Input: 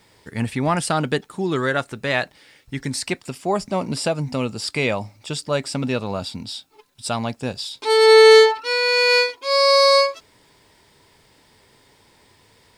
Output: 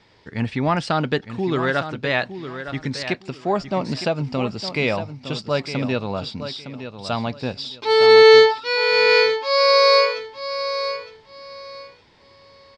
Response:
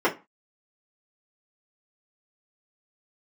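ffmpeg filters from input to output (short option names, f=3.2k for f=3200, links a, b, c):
-filter_complex "[0:a]lowpass=f=5.3k:w=0.5412,lowpass=f=5.3k:w=1.3066,asplit=2[a][b];[b]aecho=0:1:911|1822|2733:0.299|0.0687|0.0158[c];[a][c]amix=inputs=2:normalize=0"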